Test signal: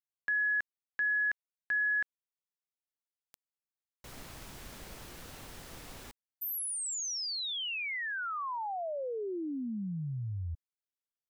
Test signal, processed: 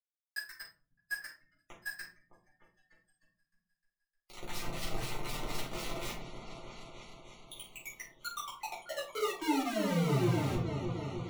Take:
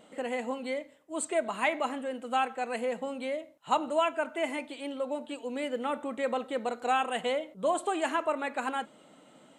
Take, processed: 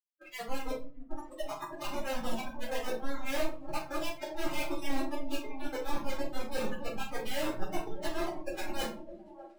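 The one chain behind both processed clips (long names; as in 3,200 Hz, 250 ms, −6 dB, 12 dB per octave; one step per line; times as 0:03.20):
auto-filter low-pass sine 4 Hz 350–5,400 Hz
dynamic equaliser 1,300 Hz, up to −6 dB, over −41 dBFS, Q 1.2
volume swells 476 ms
reversed playback
downward compressor 16 to 1, threshold −42 dBFS
reversed playback
bit reduction 7 bits
flanger 0.47 Hz, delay 5.3 ms, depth 1.5 ms, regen −29%
on a send: echo whose low-pass opens from repeat to repeat 306 ms, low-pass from 400 Hz, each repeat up 2 octaves, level −6 dB
on the sum: noise reduction from a noise print of the clip's start 24 dB
rectangular room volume 200 cubic metres, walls furnished, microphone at 3.9 metres
level +5 dB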